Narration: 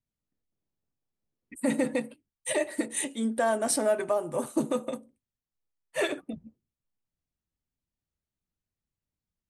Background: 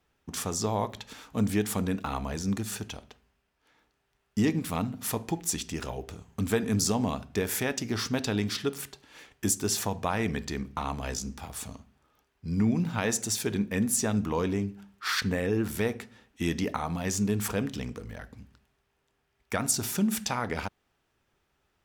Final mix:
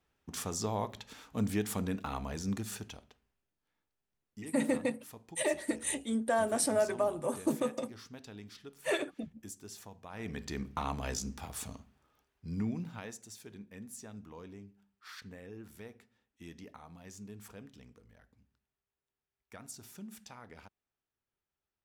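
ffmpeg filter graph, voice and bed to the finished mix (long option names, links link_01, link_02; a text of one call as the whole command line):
ffmpeg -i stem1.wav -i stem2.wav -filter_complex "[0:a]adelay=2900,volume=-3.5dB[link_01];[1:a]volume=11.5dB,afade=type=out:start_time=2.63:duration=0.96:silence=0.188365,afade=type=in:start_time=10.09:duration=0.6:silence=0.141254,afade=type=out:start_time=11.87:duration=1.31:silence=0.133352[link_02];[link_01][link_02]amix=inputs=2:normalize=0" out.wav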